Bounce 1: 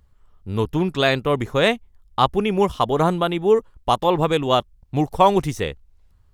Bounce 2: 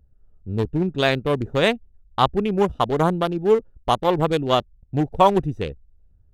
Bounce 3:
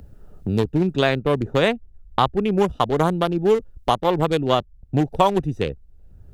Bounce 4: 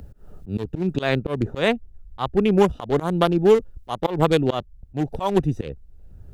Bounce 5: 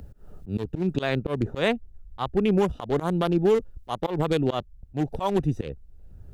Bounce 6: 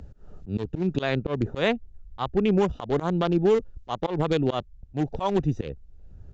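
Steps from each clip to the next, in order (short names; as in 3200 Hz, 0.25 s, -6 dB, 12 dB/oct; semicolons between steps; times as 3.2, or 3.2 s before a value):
Wiener smoothing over 41 samples
three-band squash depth 70%
auto swell 0.165 s; gain +2.5 dB
limiter -10.5 dBFS, peak gain reduction 8 dB; gain -2 dB
downsampling 16000 Hz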